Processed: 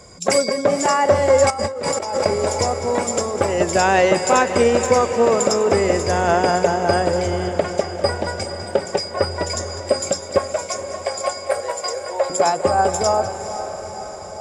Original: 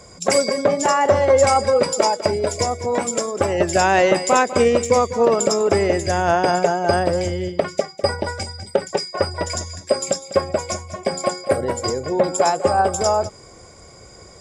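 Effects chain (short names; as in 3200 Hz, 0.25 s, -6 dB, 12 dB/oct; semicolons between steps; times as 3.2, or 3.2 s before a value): 10.38–12.3 inverse Chebyshev high-pass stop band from 260 Hz, stop band 40 dB; diffused feedback echo 0.486 s, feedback 63%, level -10.5 dB; 1.5–2.26 negative-ratio compressor -24 dBFS, ratio -1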